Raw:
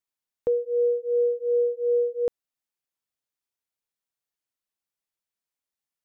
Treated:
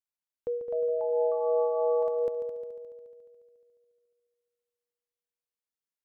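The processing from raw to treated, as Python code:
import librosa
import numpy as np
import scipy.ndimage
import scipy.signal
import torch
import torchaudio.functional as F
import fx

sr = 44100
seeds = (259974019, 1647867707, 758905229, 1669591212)

p1 = x + fx.echo_heads(x, sr, ms=71, heads='second and third', feedback_pct=60, wet_db=-10.5, dry=0)
p2 = fx.echo_pitch(p1, sr, ms=373, semitones=5, count=3, db_per_echo=-6.0)
y = F.gain(torch.from_numpy(p2), -8.5).numpy()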